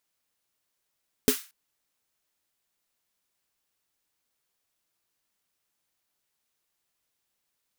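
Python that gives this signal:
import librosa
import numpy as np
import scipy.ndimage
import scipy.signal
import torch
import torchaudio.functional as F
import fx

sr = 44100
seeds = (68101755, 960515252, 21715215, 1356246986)

y = fx.drum_snare(sr, seeds[0], length_s=0.23, hz=260.0, second_hz=420.0, noise_db=-6.0, noise_from_hz=1200.0, decay_s=0.1, noise_decay_s=0.33)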